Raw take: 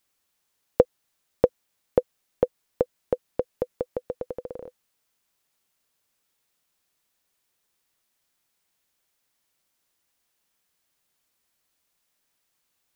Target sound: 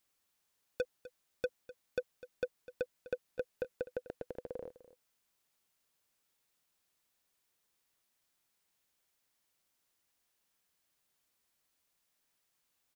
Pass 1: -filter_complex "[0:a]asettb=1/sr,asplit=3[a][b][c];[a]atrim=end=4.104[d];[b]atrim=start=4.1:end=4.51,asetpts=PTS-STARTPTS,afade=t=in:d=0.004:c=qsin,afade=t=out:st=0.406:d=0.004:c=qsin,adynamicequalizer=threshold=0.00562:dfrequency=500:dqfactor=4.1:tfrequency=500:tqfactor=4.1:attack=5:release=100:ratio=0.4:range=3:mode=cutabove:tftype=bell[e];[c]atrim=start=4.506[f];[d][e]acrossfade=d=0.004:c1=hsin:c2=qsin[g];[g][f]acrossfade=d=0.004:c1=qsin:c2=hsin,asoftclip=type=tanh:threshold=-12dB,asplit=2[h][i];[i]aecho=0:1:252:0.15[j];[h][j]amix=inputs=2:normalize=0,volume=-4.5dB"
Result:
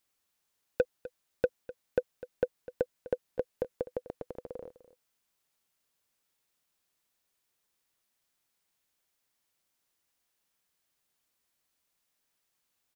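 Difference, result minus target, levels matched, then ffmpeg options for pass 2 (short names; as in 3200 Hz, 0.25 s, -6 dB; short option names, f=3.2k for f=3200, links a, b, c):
soft clip: distortion -7 dB
-filter_complex "[0:a]asettb=1/sr,asplit=3[a][b][c];[a]atrim=end=4.104[d];[b]atrim=start=4.1:end=4.51,asetpts=PTS-STARTPTS,afade=t=in:d=0.004:c=qsin,afade=t=out:st=0.406:d=0.004:c=qsin,adynamicequalizer=threshold=0.00562:dfrequency=500:dqfactor=4.1:tfrequency=500:tqfactor=4.1:attack=5:release=100:ratio=0.4:range=3:mode=cutabove:tftype=bell[e];[c]atrim=start=4.506[f];[d][e]acrossfade=d=0.004:c1=hsin:c2=qsin[g];[g][f]acrossfade=d=0.004:c1=qsin:c2=hsin,asoftclip=type=tanh:threshold=-23.5dB,asplit=2[h][i];[i]aecho=0:1:252:0.15[j];[h][j]amix=inputs=2:normalize=0,volume=-4.5dB"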